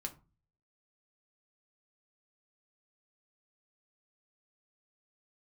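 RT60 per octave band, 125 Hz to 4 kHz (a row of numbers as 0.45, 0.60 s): 0.70, 0.45, 0.30, 0.35, 0.25, 0.20 s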